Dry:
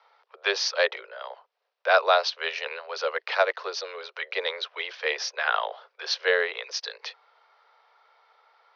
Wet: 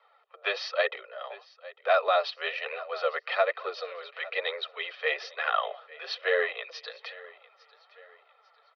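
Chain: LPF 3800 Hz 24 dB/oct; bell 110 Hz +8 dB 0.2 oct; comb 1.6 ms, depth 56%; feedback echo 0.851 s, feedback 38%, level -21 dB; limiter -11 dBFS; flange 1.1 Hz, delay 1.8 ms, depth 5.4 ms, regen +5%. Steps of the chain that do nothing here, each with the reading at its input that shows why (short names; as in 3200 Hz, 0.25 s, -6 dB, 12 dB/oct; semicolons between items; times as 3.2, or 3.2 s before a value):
bell 110 Hz: input band starts at 340 Hz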